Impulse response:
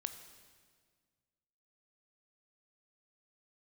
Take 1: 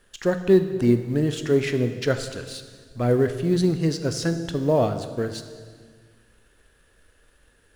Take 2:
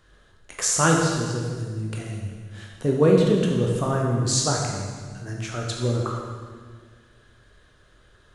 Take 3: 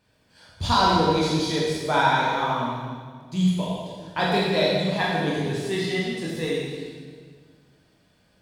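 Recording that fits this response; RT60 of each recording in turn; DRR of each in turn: 1; 1.7 s, 1.7 s, 1.7 s; 8.5 dB, -1.0 dB, -6.0 dB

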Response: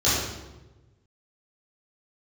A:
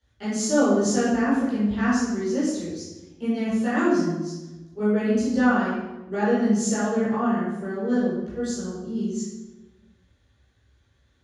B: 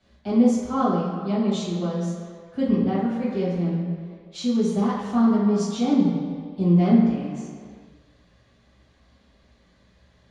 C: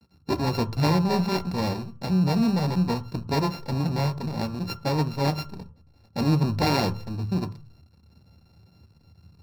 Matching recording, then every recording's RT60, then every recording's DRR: A; 1.1 s, 2.0 s, 0.45 s; -13.0 dB, -9.0 dB, 9.5 dB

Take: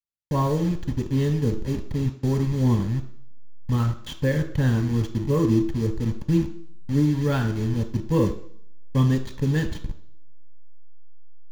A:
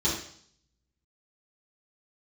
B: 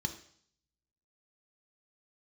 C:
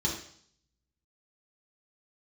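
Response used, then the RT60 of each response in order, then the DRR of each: B; 0.60 s, 0.60 s, 0.60 s; -10.0 dB, 5.0 dB, -4.0 dB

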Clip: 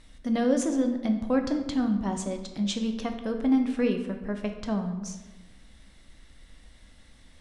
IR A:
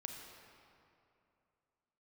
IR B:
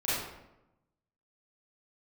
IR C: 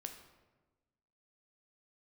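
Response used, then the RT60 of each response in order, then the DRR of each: C; 2.7 s, 0.90 s, 1.2 s; 2.0 dB, -11.5 dB, 5.0 dB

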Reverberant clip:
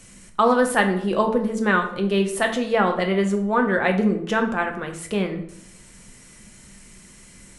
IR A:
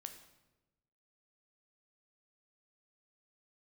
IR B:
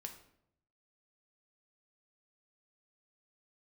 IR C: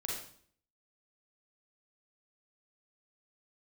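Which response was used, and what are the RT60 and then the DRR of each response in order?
B; 1.1 s, 0.75 s, 0.55 s; 6.0 dB, 4.0 dB, -3.5 dB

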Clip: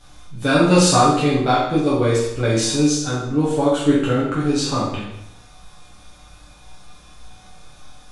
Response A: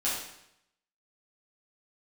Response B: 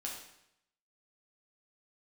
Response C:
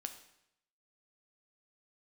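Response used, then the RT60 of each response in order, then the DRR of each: A; 0.80 s, 0.80 s, 0.80 s; -8.5 dB, -2.5 dB, 6.5 dB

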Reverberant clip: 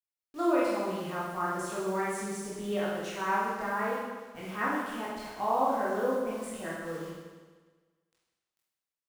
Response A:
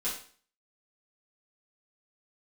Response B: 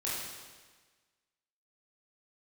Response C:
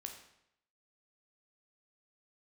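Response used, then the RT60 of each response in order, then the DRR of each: B; 0.45 s, 1.4 s, 0.75 s; -10.0 dB, -8.0 dB, 3.0 dB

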